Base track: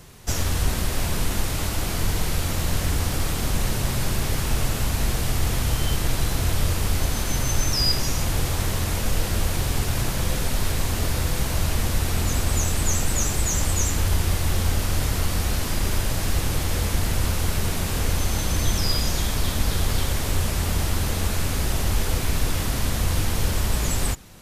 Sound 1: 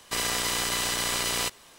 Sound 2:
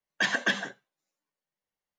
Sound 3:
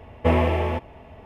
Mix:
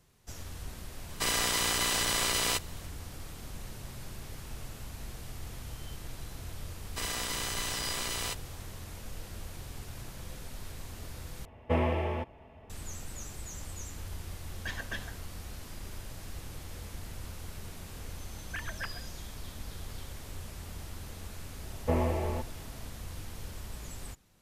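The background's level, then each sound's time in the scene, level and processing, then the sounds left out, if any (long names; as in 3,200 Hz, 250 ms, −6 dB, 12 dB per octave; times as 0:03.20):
base track −19.5 dB
0:01.09: mix in 1 −1.5 dB
0:06.85: mix in 1 −7.5 dB
0:11.45: overwrite with 3 −8.5 dB
0:14.45: mix in 2 −13 dB
0:18.34: mix in 2 −14 dB + three sine waves on the formant tracks
0:21.63: mix in 3 −8.5 dB + low-pass filter 1,400 Hz 6 dB per octave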